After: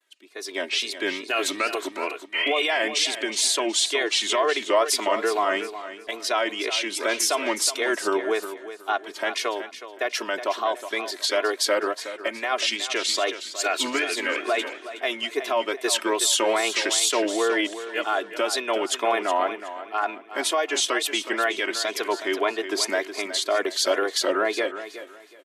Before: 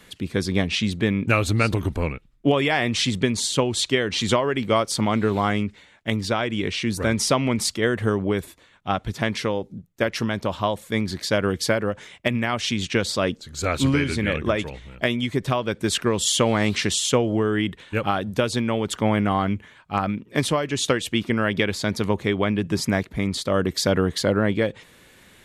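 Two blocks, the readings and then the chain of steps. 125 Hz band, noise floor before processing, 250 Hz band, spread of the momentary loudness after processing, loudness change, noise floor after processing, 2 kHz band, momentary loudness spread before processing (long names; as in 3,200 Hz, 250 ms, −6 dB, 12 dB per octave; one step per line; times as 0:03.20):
below −35 dB, −53 dBFS, −9.5 dB, 8 LU, −1.0 dB, −45 dBFS, +1.0 dB, 6 LU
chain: healed spectral selection 0:02.36–0:02.61, 1,200–3,400 Hz after
high-pass filter 420 Hz 24 dB per octave
noise gate with hold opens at −42 dBFS
comb filter 3 ms, depth 79%
brickwall limiter −15.5 dBFS, peak gain reduction 10 dB
automatic gain control gain up to 9.5 dB
tape wow and flutter 130 cents
repeating echo 369 ms, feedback 36%, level −9.5 dB
multiband upward and downward expander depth 40%
level −7.5 dB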